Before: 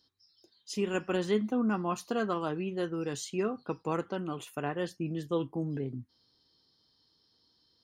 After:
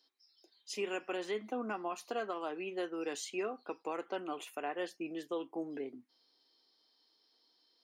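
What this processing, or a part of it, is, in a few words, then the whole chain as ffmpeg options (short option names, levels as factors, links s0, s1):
laptop speaker: -af "highpass=f=290:w=0.5412,highpass=f=290:w=1.3066,equalizer=f=720:t=o:w=0.5:g=5.5,equalizer=f=2300:t=o:w=0.56:g=7.5,alimiter=level_in=1.06:limit=0.0631:level=0:latency=1:release=222,volume=0.944,volume=0.708"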